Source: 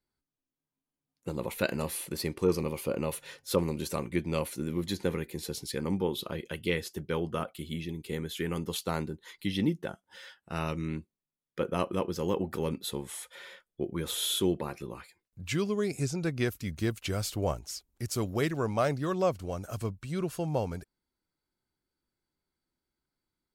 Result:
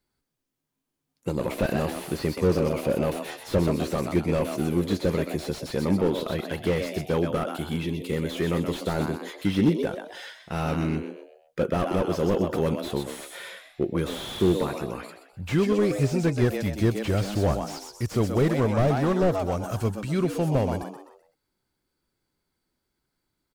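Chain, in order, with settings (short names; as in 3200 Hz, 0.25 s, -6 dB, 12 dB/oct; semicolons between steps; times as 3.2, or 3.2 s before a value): frequency-shifting echo 0.127 s, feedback 38%, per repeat +100 Hz, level -9.5 dB; slew limiter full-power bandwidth 25 Hz; gain +7.5 dB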